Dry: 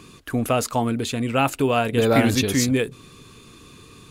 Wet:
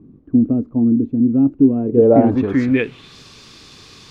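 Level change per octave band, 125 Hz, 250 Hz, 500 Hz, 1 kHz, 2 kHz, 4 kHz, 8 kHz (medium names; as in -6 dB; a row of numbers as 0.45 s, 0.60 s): +1.5 dB, +9.0 dB, +5.0 dB, -4.0 dB, -3.5 dB, under -10 dB, under -20 dB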